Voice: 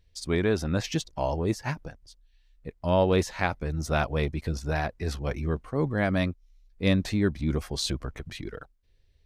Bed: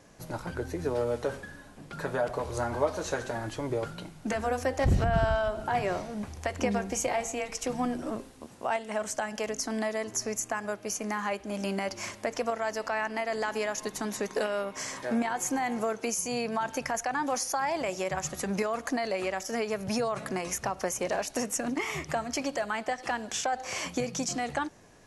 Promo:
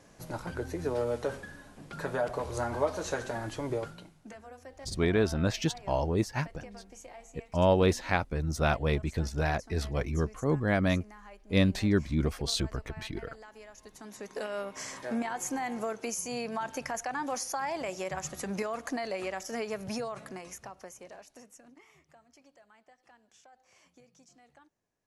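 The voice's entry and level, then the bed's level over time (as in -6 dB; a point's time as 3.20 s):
4.70 s, -1.0 dB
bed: 3.75 s -1.5 dB
4.43 s -19.5 dB
13.72 s -19.5 dB
14.59 s -4 dB
19.81 s -4 dB
22.05 s -29 dB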